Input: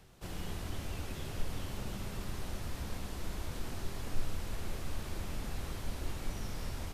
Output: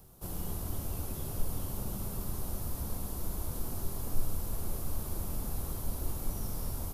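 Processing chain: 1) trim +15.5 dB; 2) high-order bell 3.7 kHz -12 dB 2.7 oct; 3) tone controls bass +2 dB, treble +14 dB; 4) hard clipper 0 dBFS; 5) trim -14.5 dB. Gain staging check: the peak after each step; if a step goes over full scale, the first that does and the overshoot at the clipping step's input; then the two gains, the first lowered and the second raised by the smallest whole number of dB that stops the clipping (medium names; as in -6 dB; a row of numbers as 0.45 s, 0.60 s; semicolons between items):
-3.5 dBFS, -3.5 dBFS, -1.5 dBFS, -1.5 dBFS, -16.0 dBFS; nothing clips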